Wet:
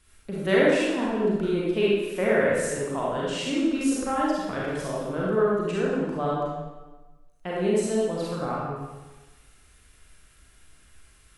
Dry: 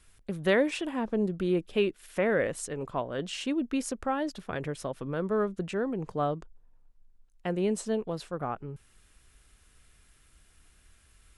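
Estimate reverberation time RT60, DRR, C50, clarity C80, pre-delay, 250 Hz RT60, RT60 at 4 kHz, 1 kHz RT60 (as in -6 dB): 1.2 s, -6.5 dB, -3.0 dB, 0.5 dB, 32 ms, 1.3 s, 1.0 s, 1.2 s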